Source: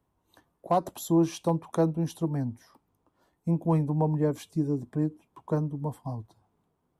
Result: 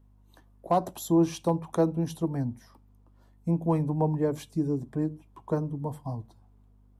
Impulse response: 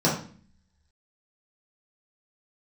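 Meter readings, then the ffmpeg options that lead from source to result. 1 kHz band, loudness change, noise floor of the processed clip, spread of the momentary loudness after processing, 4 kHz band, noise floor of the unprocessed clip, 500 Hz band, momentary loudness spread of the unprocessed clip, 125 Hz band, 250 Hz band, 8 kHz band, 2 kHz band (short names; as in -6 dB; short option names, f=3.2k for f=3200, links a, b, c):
+0.5 dB, 0.0 dB, -59 dBFS, 11 LU, n/a, -76 dBFS, +0.5 dB, 9 LU, -1.0 dB, 0.0 dB, 0.0 dB, 0.0 dB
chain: -filter_complex "[0:a]aeval=exprs='val(0)+0.00141*(sin(2*PI*50*n/s)+sin(2*PI*2*50*n/s)/2+sin(2*PI*3*50*n/s)/3+sin(2*PI*4*50*n/s)/4+sin(2*PI*5*50*n/s)/5)':c=same,asplit=2[a][b];[1:a]atrim=start_sample=2205,atrim=end_sample=6615[c];[b][c]afir=irnorm=-1:irlink=0,volume=-37dB[d];[a][d]amix=inputs=2:normalize=0"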